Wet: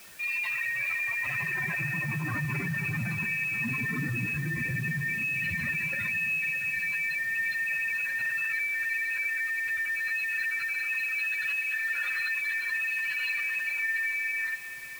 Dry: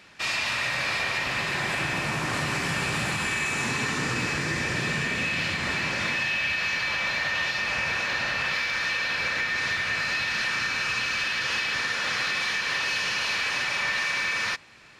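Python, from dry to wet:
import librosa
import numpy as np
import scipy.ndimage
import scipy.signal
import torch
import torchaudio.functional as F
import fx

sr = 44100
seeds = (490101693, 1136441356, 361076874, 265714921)

y = fx.spec_expand(x, sr, power=3.3)
y = fx.quant_dither(y, sr, seeds[0], bits=8, dither='triangular')
y = fx.echo_split(y, sr, split_hz=1600.0, low_ms=627, high_ms=425, feedback_pct=52, wet_db=-13.0)
y = F.gain(torch.from_numpy(y), -2.5).numpy()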